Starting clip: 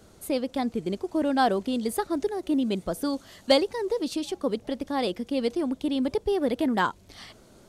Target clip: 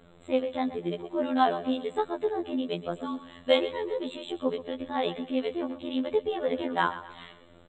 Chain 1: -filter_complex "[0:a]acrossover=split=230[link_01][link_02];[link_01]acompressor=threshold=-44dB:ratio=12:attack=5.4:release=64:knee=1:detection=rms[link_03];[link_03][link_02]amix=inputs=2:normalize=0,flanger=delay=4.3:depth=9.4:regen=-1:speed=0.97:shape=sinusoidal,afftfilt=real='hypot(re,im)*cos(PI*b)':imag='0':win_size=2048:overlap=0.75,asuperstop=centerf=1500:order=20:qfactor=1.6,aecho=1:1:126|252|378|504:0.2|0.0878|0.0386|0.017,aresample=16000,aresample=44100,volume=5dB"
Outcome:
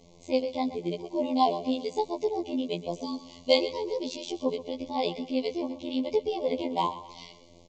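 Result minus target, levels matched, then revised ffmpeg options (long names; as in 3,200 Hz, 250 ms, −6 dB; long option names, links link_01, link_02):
2,000 Hz band −6.0 dB
-filter_complex "[0:a]acrossover=split=230[link_01][link_02];[link_01]acompressor=threshold=-44dB:ratio=12:attack=5.4:release=64:knee=1:detection=rms[link_03];[link_03][link_02]amix=inputs=2:normalize=0,flanger=delay=4.3:depth=9.4:regen=-1:speed=0.97:shape=sinusoidal,afftfilt=real='hypot(re,im)*cos(PI*b)':imag='0':win_size=2048:overlap=0.75,asuperstop=centerf=5500:order=20:qfactor=1.6,aecho=1:1:126|252|378|504:0.2|0.0878|0.0386|0.017,aresample=16000,aresample=44100,volume=5dB"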